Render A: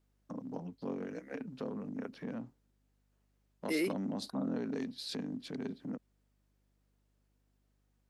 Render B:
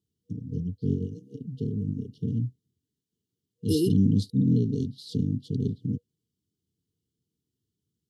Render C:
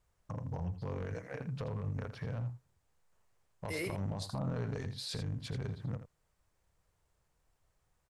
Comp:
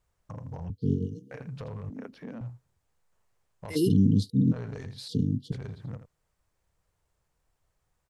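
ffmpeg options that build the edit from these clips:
-filter_complex "[1:a]asplit=3[s0][s1][s2];[2:a]asplit=5[s3][s4][s5][s6][s7];[s3]atrim=end=0.702[s8];[s0]atrim=start=0.698:end=1.312[s9];[s4]atrim=start=1.308:end=1.902[s10];[0:a]atrim=start=1.898:end=2.412[s11];[s5]atrim=start=2.408:end=3.77[s12];[s1]atrim=start=3.75:end=4.53[s13];[s6]atrim=start=4.51:end=5.082[s14];[s2]atrim=start=5.078:end=5.522[s15];[s7]atrim=start=5.518[s16];[s8][s9]acrossfade=d=0.004:c1=hsin:c2=hsin[s17];[s17][s10]acrossfade=d=0.004:c1=hsin:c2=hsin[s18];[s18][s11]acrossfade=d=0.004:c1=hsin:c2=hsin[s19];[s19][s12]acrossfade=d=0.004:c1=hsin:c2=hsin[s20];[s20][s13]acrossfade=d=0.02:c1=tri:c2=tri[s21];[s21][s14]acrossfade=d=0.02:c1=tri:c2=tri[s22];[s22][s15]acrossfade=d=0.004:c1=hsin:c2=hsin[s23];[s23][s16]acrossfade=d=0.004:c1=hsin:c2=hsin"

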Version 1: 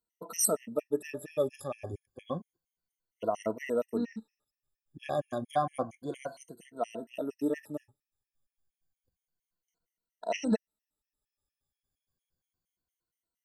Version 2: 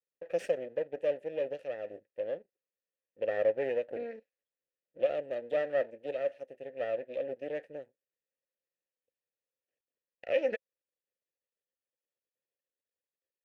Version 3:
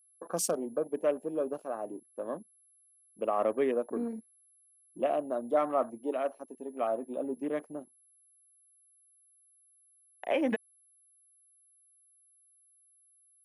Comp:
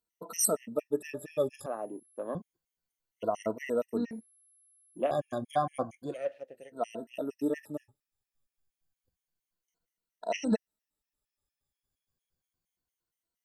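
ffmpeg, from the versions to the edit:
-filter_complex "[2:a]asplit=2[s0][s1];[0:a]asplit=4[s2][s3][s4][s5];[s2]atrim=end=1.662[s6];[s0]atrim=start=1.658:end=2.352[s7];[s3]atrim=start=2.348:end=4.112[s8];[s1]atrim=start=4.108:end=5.112[s9];[s4]atrim=start=5.108:end=6.3[s10];[1:a]atrim=start=6.06:end=6.76[s11];[s5]atrim=start=6.52[s12];[s6][s7]acrossfade=d=0.004:c1=hsin:c2=hsin[s13];[s13][s8]acrossfade=d=0.004:c1=hsin:c2=hsin[s14];[s14][s9]acrossfade=d=0.004:c1=hsin:c2=hsin[s15];[s15][s10]acrossfade=d=0.004:c1=hsin:c2=hsin[s16];[s16][s11]acrossfade=d=0.24:c1=tri:c2=tri[s17];[s17][s12]acrossfade=d=0.24:c1=tri:c2=tri"

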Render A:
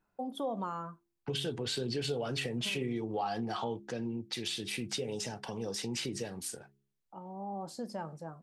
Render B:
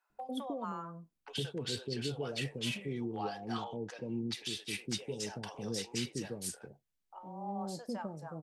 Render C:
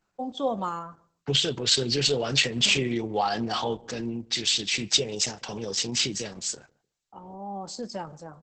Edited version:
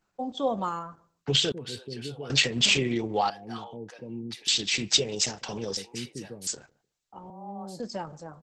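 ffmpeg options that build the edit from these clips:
-filter_complex "[1:a]asplit=4[s0][s1][s2][s3];[2:a]asplit=5[s4][s5][s6][s7][s8];[s4]atrim=end=1.522[s9];[s0]atrim=start=1.518:end=2.302[s10];[s5]atrim=start=2.298:end=3.302[s11];[s1]atrim=start=3.298:end=4.482[s12];[s6]atrim=start=4.478:end=5.772[s13];[s2]atrim=start=5.768:end=6.472[s14];[s7]atrim=start=6.468:end=7.302[s15];[s3]atrim=start=7.298:end=7.802[s16];[s8]atrim=start=7.798[s17];[s9][s10]acrossfade=d=0.004:c1=hsin:c2=hsin[s18];[s18][s11]acrossfade=d=0.004:c1=hsin:c2=hsin[s19];[s19][s12]acrossfade=d=0.004:c1=hsin:c2=hsin[s20];[s20][s13]acrossfade=d=0.004:c1=hsin:c2=hsin[s21];[s21][s14]acrossfade=d=0.004:c1=hsin:c2=hsin[s22];[s22][s15]acrossfade=d=0.004:c1=hsin:c2=hsin[s23];[s23][s16]acrossfade=d=0.004:c1=hsin:c2=hsin[s24];[s24][s17]acrossfade=d=0.004:c1=hsin:c2=hsin"

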